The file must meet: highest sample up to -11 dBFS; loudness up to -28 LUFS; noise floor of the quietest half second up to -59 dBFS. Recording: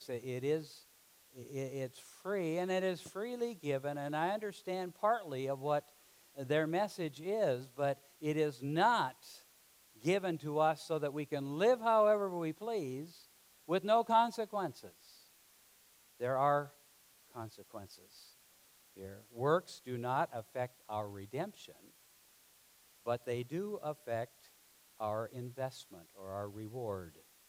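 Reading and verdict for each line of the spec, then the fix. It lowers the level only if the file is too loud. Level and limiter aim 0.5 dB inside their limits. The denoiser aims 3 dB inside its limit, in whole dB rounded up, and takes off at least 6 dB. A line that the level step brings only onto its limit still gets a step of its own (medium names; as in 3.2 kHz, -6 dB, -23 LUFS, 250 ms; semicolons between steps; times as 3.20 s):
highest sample -17.5 dBFS: pass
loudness -36.5 LUFS: pass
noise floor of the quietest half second -66 dBFS: pass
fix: none needed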